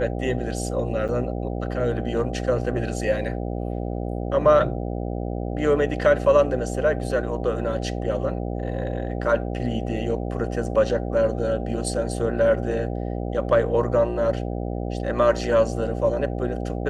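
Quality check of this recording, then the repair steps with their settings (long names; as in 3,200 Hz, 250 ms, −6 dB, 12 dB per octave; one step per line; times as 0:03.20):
mains buzz 60 Hz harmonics 13 −28 dBFS
0:01.08–0:01.09: drop-out 7.3 ms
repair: hum removal 60 Hz, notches 13
repair the gap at 0:01.08, 7.3 ms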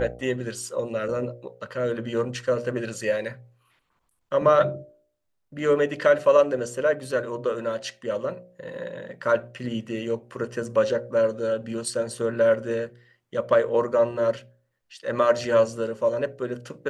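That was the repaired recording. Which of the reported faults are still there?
none of them is left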